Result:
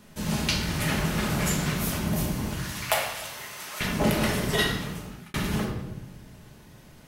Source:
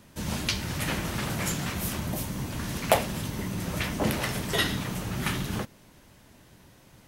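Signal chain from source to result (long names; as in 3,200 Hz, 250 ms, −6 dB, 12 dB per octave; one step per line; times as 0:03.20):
0:02.53–0:03.81: high-pass filter 1,000 Hz 12 dB per octave
rectangular room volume 580 cubic metres, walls mixed, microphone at 1.4 metres
0:04.48–0:05.34: fade out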